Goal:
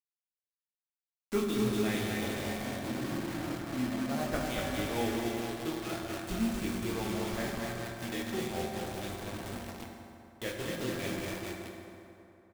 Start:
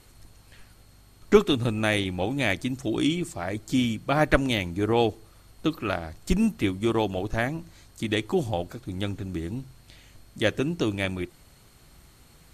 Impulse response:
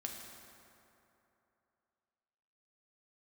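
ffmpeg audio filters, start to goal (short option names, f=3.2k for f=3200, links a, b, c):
-filter_complex "[0:a]asettb=1/sr,asplit=3[a][b][c];[a]atrim=end=2.324[d];[b]atrim=start=2.32:end=4.34,asetpts=PTS-STARTPTS,afade=t=in:d=0.004:c=qsin,afade=t=out:st=2.016:d=0.004:c=qsin,lowpass=1.1k[e];[c]atrim=start=4.336[f];[d][e]acrossfade=d=0.004:c1=hsin:c2=qsin[g];[g][f]acrossfade=d=0.004:c1=qsin:c2=hsin,aecho=1:1:240|444|617.4|764.8|890.1:0.631|0.398|0.251|0.158|0.1,flanger=delay=19.5:depth=5.7:speed=0.43,acrusher=bits=4:mix=0:aa=0.000001[h];[1:a]atrim=start_sample=2205[i];[h][i]afir=irnorm=-1:irlink=0,volume=-7.5dB"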